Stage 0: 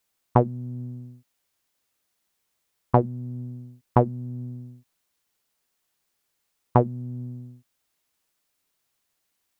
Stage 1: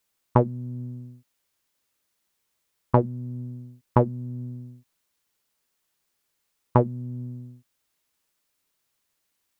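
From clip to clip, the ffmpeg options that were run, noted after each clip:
ffmpeg -i in.wav -af "bandreject=frequency=730:width=12" out.wav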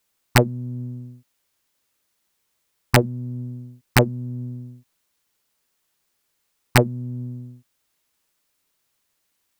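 ffmpeg -i in.wav -af "aeval=exprs='(mod(2*val(0)+1,2)-1)/2':channel_layout=same,volume=3.5dB" out.wav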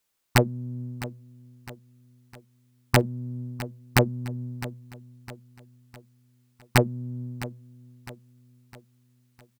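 ffmpeg -i in.wav -af "aecho=1:1:658|1316|1974|2632:0.158|0.0729|0.0335|0.0154,volume=-4dB" out.wav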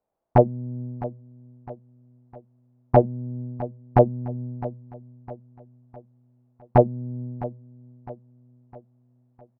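ffmpeg -i in.wav -af "lowpass=frequency=690:width_type=q:width=3.4,volume=1.5dB" out.wav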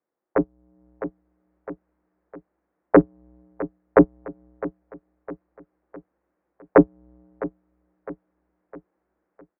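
ffmpeg -i in.wav -af "highpass=frequency=520:width_type=q:width=0.5412,highpass=frequency=520:width_type=q:width=1.307,lowpass=frequency=2200:width_type=q:width=0.5176,lowpass=frequency=2200:width_type=q:width=0.7071,lowpass=frequency=2200:width_type=q:width=1.932,afreqshift=-310,tiltshelf=frequency=750:gain=-9.5,dynaudnorm=framelen=550:gausssize=3:maxgain=10dB,volume=2dB" out.wav

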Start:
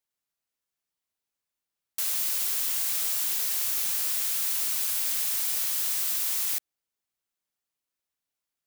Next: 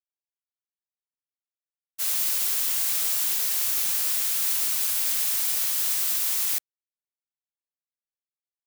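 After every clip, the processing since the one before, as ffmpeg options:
ffmpeg -i in.wav -af "agate=range=-33dB:threshold=-23dB:ratio=3:detection=peak,volume=6.5dB" out.wav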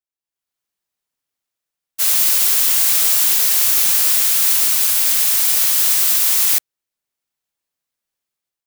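ffmpeg -i in.wav -af "dynaudnorm=framelen=160:gausssize=5:maxgain=13dB" out.wav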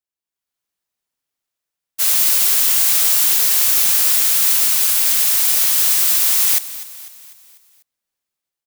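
ffmpeg -i in.wav -af "aecho=1:1:248|496|744|992|1240:0.158|0.0824|0.0429|0.0223|0.0116" out.wav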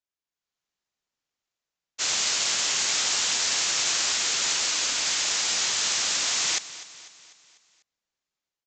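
ffmpeg -i in.wav -af "aresample=16000,aresample=44100,volume=-1.5dB" out.wav

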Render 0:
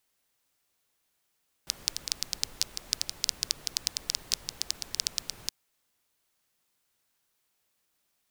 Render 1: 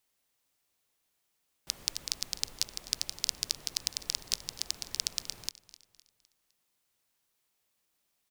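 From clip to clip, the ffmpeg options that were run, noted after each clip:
ffmpeg -i in.wav -af "equalizer=frequency=1500:width_type=o:width=0.41:gain=-2.5,aecho=1:1:255|510|765|1020:0.119|0.0523|0.023|0.0101,volume=-2dB" out.wav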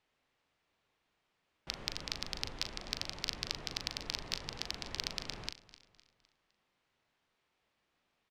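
ffmpeg -i in.wav -filter_complex "[0:a]lowpass=2800,asplit=2[link_01][link_02];[link_02]volume=25.5dB,asoftclip=hard,volume=-25.5dB,volume=-3dB[link_03];[link_01][link_03]amix=inputs=2:normalize=0,asplit=2[link_04][link_05];[link_05]adelay=39,volume=-9dB[link_06];[link_04][link_06]amix=inputs=2:normalize=0,volume=1dB" out.wav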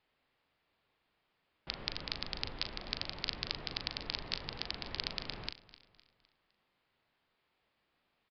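ffmpeg -i in.wav -af "aresample=11025,aresample=44100,volume=1dB" out.wav

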